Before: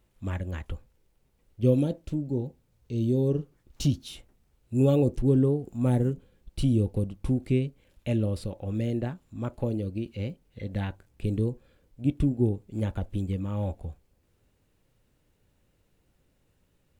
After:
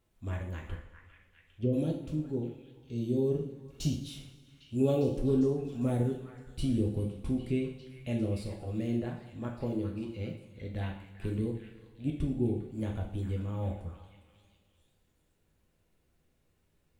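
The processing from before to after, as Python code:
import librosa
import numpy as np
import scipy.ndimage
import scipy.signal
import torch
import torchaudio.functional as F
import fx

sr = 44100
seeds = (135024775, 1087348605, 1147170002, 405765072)

y = fx.echo_stepped(x, sr, ms=402, hz=1500.0, octaves=0.7, feedback_pct=70, wet_db=-7)
y = fx.env_lowpass_down(y, sr, base_hz=460.0, full_db=-18.5, at=(0.74, 1.72), fade=0.02)
y = fx.rev_double_slope(y, sr, seeds[0], early_s=0.54, late_s=2.1, knee_db=-17, drr_db=0.0)
y = y * librosa.db_to_amplitude(-7.0)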